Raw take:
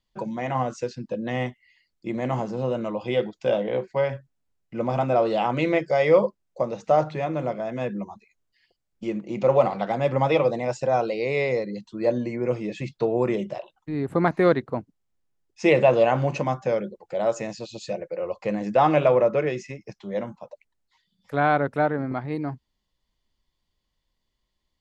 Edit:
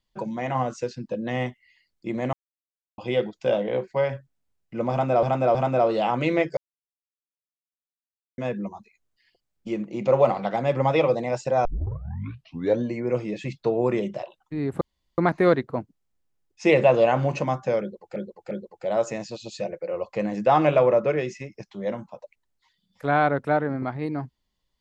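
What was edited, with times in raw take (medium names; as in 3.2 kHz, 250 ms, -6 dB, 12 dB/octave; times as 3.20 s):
2.33–2.98 s: mute
4.91–5.23 s: loop, 3 plays
5.93–7.74 s: mute
11.01 s: tape start 1.18 s
14.17 s: insert room tone 0.37 s
16.80–17.15 s: loop, 3 plays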